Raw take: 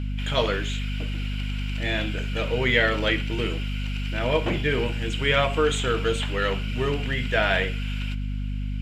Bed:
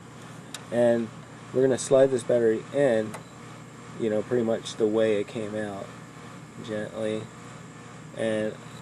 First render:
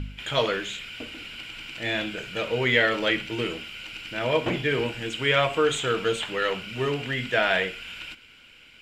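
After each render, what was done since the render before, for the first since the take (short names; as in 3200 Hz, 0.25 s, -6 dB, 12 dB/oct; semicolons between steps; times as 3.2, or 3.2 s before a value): de-hum 50 Hz, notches 5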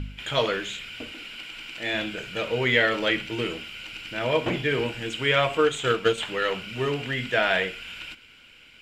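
1.12–1.94 bell 72 Hz -13.5 dB 1.7 oct; 5.57–6.18 transient shaper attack +7 dB, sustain -5 dB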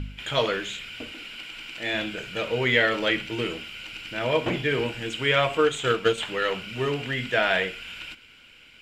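nothing audible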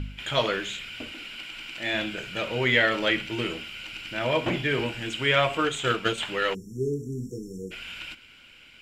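notch 460 Hz, Q 12; 6.54–7.71 spectral delete 490–5400 Hz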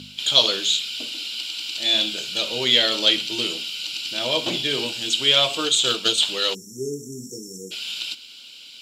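HPF 190 Hz 12 dB/oct; resonant high shelf 2800 Hz +13 dB, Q 3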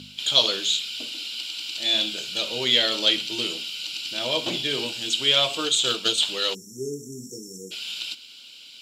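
gain -2.5 dB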